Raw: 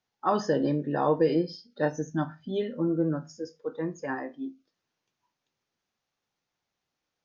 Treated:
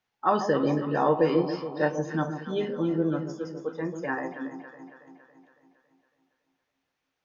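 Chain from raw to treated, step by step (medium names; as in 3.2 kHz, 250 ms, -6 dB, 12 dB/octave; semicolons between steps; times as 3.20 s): FFT filter 340 Hz 0 dB, 2.5 kHz +5 dB, 4.9 kHz -2 dB; on a send: echo whose repeats swap between lows and highs 139 ms, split 960 Hz, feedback 74%, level -8 dB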